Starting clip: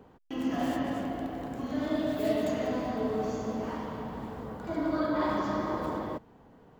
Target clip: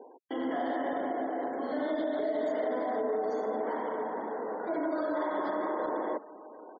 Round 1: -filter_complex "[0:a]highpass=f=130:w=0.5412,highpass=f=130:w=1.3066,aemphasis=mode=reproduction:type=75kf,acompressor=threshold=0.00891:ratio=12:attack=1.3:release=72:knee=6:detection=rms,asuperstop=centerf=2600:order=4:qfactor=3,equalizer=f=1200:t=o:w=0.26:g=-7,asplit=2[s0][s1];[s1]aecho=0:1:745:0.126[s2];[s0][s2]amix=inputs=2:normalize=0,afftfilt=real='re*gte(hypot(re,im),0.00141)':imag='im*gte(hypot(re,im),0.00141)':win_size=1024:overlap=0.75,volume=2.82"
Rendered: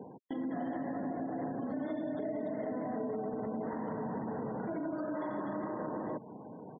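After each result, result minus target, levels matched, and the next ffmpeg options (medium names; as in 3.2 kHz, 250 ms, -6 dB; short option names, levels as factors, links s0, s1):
125 Hz band +19.0 dB; compression: peak gain reduction +7.5 dB
-filter_complex "[0:a]highpass=f=340:w=0.5412,highpass=f=340:w=1.3066,aemphasis=mode=reproduction:type=75kf,acompressor=threshold=0.00891:ratio=12:attack=1.3:release=72:knee=6:detection=rms,asuperstop=centerf=2600:order=4:qfactor=3,equalizer=f=1200:t=o:w=0.26:g=-7,asplit=2[s0][s1];[s1]aecho=0:1:745:0.126[s2];[s0][s2]amix=inputs=2:normalize=0,afftfilt=real='re*gte(hypot(re,im),0.00141)':imag='im*gte(hypot(re,im),0.00141)':win_size=1024:overlap=0.75,volume=2.82"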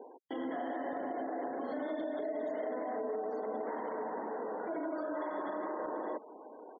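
compression: peak gain reduction +6 dB
-filter_complex "[0:a]highpass=f=340:w=0.5412,highpass=f=340:w=1.3066,aemphasis=mode=reproduction:type=75kf,acompressor=threshold=0.0188:ratio=12:attack=1.3:release=72:knee=6:detection=rms,asuperstop=centerf=2600:order=4:qfactor=3,equalizer=f=1200:t=o:w=0.26:g=-7,asplit=2[s0][s1];[s1]aecho=0:1:745:0.126[s2];[s0][s2]amix=inputs=2:normalize=0,afftfilt=real='re*gte(hypot(re,im),0.00141)':imag='im*gte(hypot(re,im),0.00141)':win_size=1024:overlap=0.75,volume=2.82"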